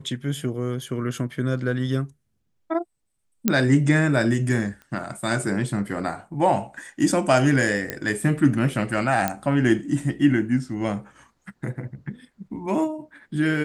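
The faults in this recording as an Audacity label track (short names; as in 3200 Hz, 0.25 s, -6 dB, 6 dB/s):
3.480000	3.480000	pop -4 dBFS
4.820000	4.820000	pop -29 dBFS
7.900000	7.900000	pop -10 dBFS
9.280000	9.280000	pop -8 dBFS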